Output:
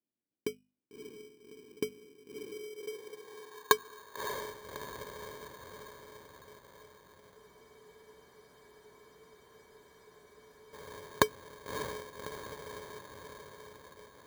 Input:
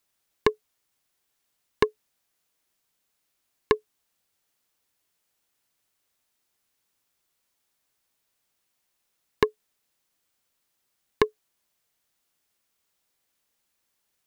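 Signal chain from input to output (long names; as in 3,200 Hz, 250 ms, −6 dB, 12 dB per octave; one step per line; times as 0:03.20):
brickwall limiter −10.5 dBFS, peak gain reduction 7.5 dB
mains-hum notches 50/100/150/200/250 Hz
feedback delay with all-pass diffusion 603 ms, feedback 59%, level −8 dB
low-pass filter sweep 260 Hz → 2,600 Hz, 0:02.29–0:04.57
speech leveller within 5 dB 2 s
spectral tilt +4 dB per octave
sample-rate reduction 2,700 Hz, jitter 0%
high-pass filter 53 Hz
frozen spectrum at 0:07.38, 3.37 s
level +1 dB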